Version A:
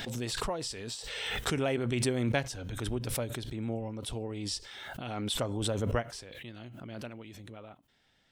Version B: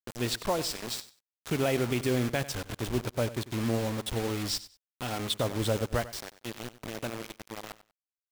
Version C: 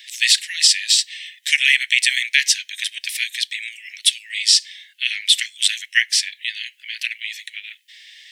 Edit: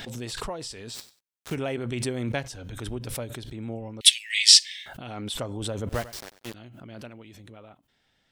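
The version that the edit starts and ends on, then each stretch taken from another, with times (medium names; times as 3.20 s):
A
0.96–1.53 s: from B, crossfade 0.06 s
4.01–4.86 s: from C
5.89–6.54 s: from B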